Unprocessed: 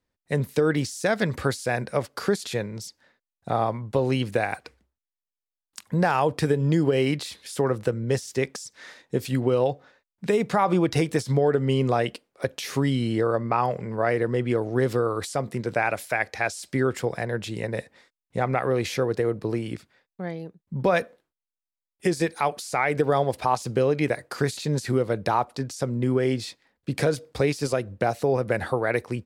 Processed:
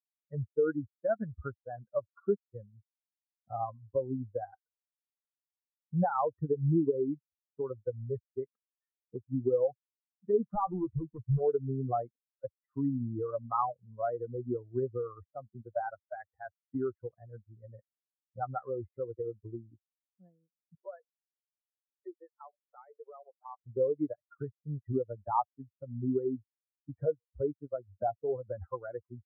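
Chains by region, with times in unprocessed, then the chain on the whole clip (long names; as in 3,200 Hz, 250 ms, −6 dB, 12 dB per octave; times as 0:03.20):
0:10.55–0:11.41: high-pass filter 40 Hz 24 dB per octave + low-shelf EQ 95 Hz +10.5 dB + gain into a clipping stage and back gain 20 dB
0:20.75–0:23.62: Butterworth high-pass 360 Hz + downward compressor 4 to 1, threshold −25 dBFS
whole clip: spectral dynamics exaggerated over time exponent 3; Butterworth low-pass 1,400 Hz 72 dB per octave; dynamic equaliser 190 Hz, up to −3 dB, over −45 dBFS, Q 1.9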